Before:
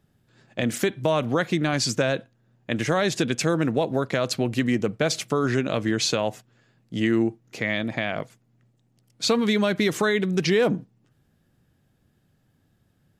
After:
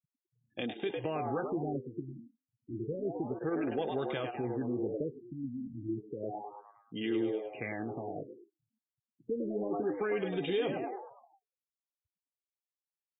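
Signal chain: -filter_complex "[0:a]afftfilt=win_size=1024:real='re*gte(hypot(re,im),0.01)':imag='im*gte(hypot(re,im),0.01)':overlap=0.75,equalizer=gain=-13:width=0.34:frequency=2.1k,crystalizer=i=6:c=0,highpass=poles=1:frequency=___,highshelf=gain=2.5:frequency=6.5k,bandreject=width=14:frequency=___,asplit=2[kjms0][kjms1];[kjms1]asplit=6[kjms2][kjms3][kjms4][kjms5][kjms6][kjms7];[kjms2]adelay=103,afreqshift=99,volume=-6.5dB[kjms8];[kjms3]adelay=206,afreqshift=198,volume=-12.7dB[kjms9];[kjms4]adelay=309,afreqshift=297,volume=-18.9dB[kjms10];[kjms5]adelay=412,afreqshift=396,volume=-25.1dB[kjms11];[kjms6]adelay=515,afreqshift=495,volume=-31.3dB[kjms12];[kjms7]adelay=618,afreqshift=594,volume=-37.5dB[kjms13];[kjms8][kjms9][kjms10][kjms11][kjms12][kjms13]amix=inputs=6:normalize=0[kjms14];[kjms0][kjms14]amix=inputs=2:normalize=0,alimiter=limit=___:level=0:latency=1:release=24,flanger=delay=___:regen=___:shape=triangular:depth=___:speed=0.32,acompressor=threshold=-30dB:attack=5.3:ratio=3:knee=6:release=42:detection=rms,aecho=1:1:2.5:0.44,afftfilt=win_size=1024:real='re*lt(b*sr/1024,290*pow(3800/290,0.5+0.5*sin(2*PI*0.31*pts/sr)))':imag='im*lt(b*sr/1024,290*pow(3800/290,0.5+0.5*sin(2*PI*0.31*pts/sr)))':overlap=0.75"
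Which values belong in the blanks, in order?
200, 1.9k, -13dB, 0.4, -52, 8.2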